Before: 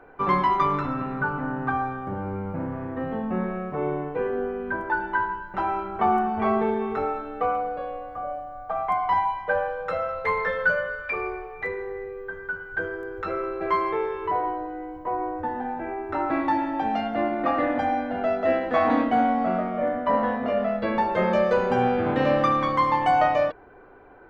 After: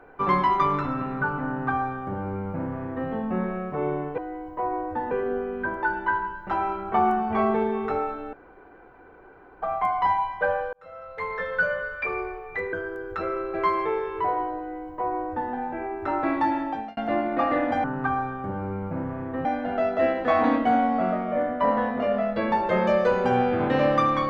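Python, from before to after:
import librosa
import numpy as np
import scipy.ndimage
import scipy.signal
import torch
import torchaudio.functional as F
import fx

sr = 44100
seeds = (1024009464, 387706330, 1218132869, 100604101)

y = fx.edit(x, sr, fx.duplicate(start_s=1.47, length_s=1.61, to_s=17.91),
    fx.room_tone_fill(start_s=7.4, length_s=1.29),
    fx.fade_in_span(start_s=9.8, length_s=1.11),
    fx.cut(start_s=11.8, length_s=1.0),
    fx.duplicate(start_s=14.66, length_s=0.93, to_s=4.18),
    fx.fade_out_span(start_s=16.68, length_s=0.36), tone=tone)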